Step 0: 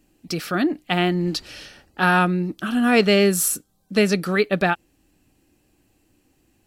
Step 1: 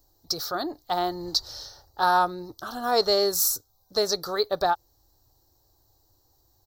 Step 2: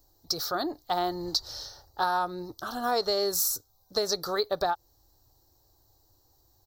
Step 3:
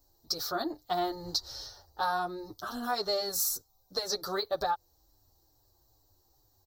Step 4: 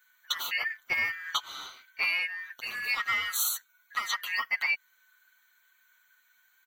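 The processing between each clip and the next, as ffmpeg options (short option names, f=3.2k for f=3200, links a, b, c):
-af "firequalizer=gain_entry='entry(110,0);entry(190,-23);entry(390,-6);entry(920,3);entry(1600,-11);entry(2600,-27);entry(3900,4);entry(5800,5);entry(9300,-12);entry(15000,12)':delay=0.05:min_phase=1"
-af "acompressor=threshold=-23dB:ratio=6"
-filter_complex "[0:a]asplit=2[a][b];[b]adelay=7.8,afreqshift=-2.3[c];[a][c]amix=inputs=2:normalize=1"
-af "afftfilt=real='real(if(lt(b,272),68*(eq(floor(b/68),0)*2+eq(floor(b/68),1)*0+eq(floor(b/68),2)*3+eq(floor(b/68),3)*1)+mod(b,68),b),0)':imag='imag(if(lt(b,272),68*(eq(floor(b/68),0)*2+eq(floor(b/68),1)*0+eq(floor(b/68),2)*3+eq(floor(b/68),3)*1)+mod(b,68),b),0)':win_size=2048:overlap=0.75,volume=1.5dB"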